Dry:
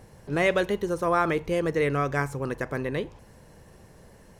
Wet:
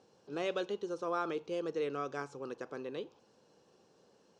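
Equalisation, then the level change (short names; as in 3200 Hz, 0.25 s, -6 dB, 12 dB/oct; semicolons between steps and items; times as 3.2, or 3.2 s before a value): speaker cabinet 340–6300 Hz, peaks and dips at 630 Hz -7 dB, 970 Hz -6 dB, 2100 Hz -9 dB; bell 1800 Hz -10 dB 0.44 oct; -7.0 dB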